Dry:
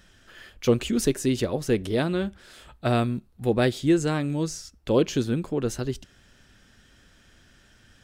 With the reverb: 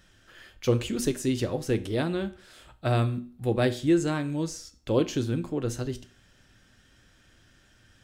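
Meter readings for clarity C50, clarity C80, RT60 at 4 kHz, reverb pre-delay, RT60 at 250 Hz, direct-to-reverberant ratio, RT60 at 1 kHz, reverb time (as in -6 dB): 17.0 dB, 21.0 dB, 0.40 s, 4 ms, 0.45 s, 10.0 dB, 0.45 s, 0.45 s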